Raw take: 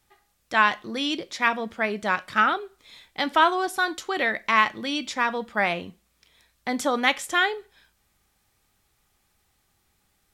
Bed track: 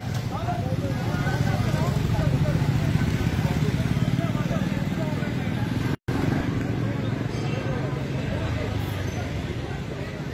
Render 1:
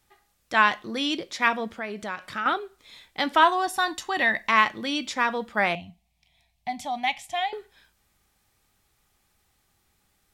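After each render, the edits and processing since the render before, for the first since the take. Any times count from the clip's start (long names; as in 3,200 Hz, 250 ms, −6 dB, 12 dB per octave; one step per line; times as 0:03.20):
0:01.70–0:02.46: downward compressor 2 to 1, threshold −34 dBFS
0:03.43–0:04.49: comb filter 1.1 ms, depth 53%
0:05.75–0:07.53: drawn EQ curve 170 Hz 0 dB, 490 Hz −29 dB, 700 Hz +5 dB, 1,400 Hz −24 dB, 2,200 Hz −3 dB, 7,300 Hz −10 dB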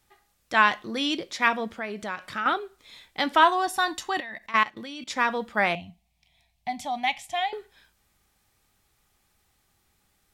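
0:04.20–0:05.10: output level in coarse steps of 19 dB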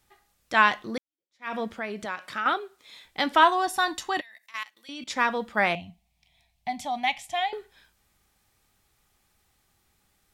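0:00.98–0:01.55: fade in exponential
0:02.05–0:03.05: high-pass filter 260 Hz 6 dB per octave
0:04.21–0:04.89: first difference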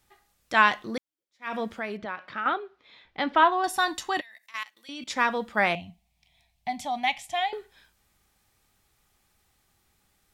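0:01.97–0:03.64: high-frequency loss of the air 260 metres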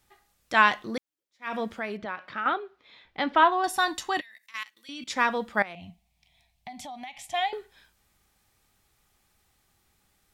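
0:04.19–0:05.12: parametric band 710 Hz −8.5 dB 1 octave
0:05.62–0:07.34: downward compressor 8 to 1, threshold −37 dBFS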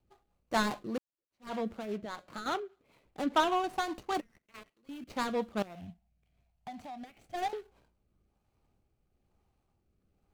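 running median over 25 samples
rotating-speaker cabinet horn 5 Hz, later 1.1 Hz, at 0:04.97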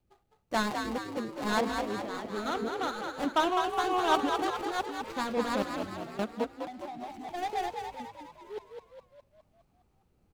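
delay that plays each chunk backwards 537 ms, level 0 dB
echo with shifted repeats 206 ms, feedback 54%, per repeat +51 Hz, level −5.5 dB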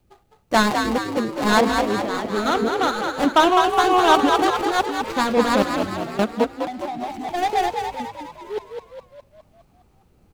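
level +12 dB
brickwall limiter −3 dBFS, peak gain reduction 2.5 dB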